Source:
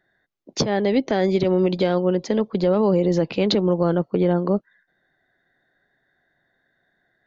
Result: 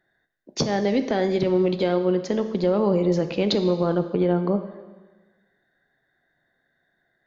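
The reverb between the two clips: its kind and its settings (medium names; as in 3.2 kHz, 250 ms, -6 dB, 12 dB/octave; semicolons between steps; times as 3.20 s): plate-style reverb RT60 1.3 s, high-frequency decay 0.95×, DRR 8.5 dB; trim -2.5 dB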